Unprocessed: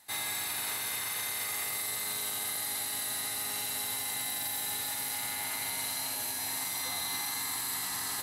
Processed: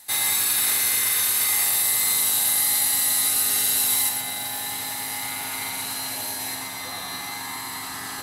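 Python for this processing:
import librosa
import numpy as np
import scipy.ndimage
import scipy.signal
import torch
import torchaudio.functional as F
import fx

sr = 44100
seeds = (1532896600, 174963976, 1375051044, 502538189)

y = fx.high_shelf(x, sr, hz=3900.0, db=fx.steps((0.0, 8.0), (4.08, -3.0), (6.54, -9.0)))
y = y + 10.0 ** (-5.5 / 20.0) * np.pad(y, (int(115 * sr / 1000.0), 0))[:len(y)]
y = y * 10.0 ** (6.0 / 20.0)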